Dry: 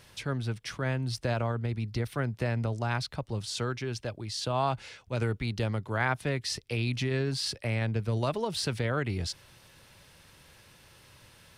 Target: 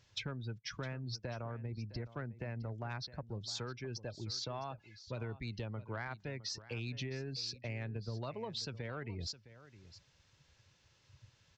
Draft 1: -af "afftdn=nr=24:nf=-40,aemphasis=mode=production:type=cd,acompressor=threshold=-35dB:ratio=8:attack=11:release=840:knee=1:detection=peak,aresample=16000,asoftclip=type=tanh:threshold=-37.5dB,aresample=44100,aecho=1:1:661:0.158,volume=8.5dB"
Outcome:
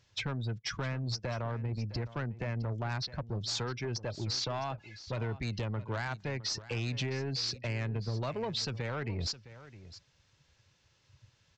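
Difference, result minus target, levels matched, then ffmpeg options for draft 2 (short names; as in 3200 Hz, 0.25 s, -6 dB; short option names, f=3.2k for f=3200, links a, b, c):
compressor: peak gain reduction -9 dB
-af "afftdn=nr=24:nf=-40,aemphasis=mode=production:type=cd,acompressor=threshold=-45.5dB:ratio=8:attack=11:release=840:knee=1:detection=peak,aresample=16000,asoftclip=type=tanh:threshold=-37.5dB,aresample=44100,aecho=1:1:661:0.158,volume=8.5dB"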